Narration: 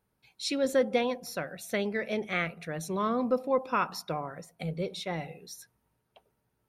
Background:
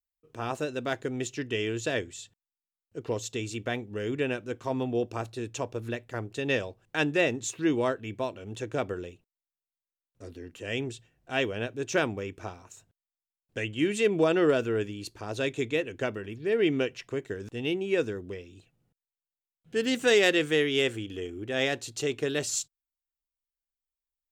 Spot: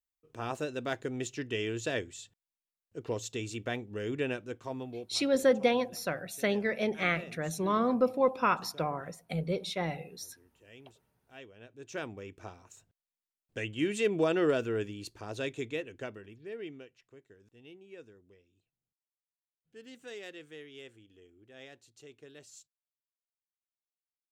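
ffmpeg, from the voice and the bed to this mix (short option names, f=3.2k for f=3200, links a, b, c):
-filter_complex "[0:a]adelay=4700,volume=1dB[a];[1:a]volume=14.5dB,afade=t=out:st=4.31:d=0.88:silence=0.11885,afade=t=in:st=11.58:d=1.34:silence=0.125893,afade=t=out:st=15.05:d=1.8:silence=0.112202[b];[a][b]amix=inputs=2:normalize=0"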